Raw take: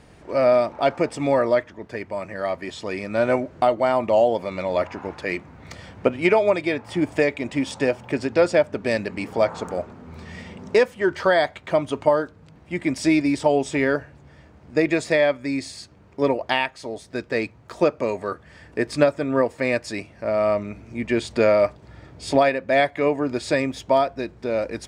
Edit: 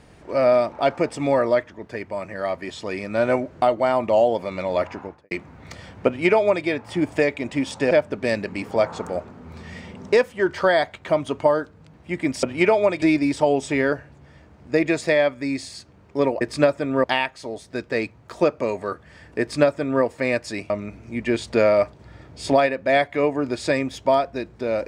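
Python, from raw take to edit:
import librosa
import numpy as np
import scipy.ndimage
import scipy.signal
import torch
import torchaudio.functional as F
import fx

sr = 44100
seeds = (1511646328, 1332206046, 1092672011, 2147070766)

y = fx.studio_fade_out(x, sr, start_s=4.91, length_s=0.4)
y = fx.edit(y, sr, fx.duplicate(start_s=6.07, length_s=0.59, to_s=13.05),
    fx.cut(start_s=7.91, length_s=0.62),
    fx.duplicate(start_s=18.8, length_s=0.63, to_s=16.44),
    fx.cut(start_s=20.1, length_s=0.43), tone=tone)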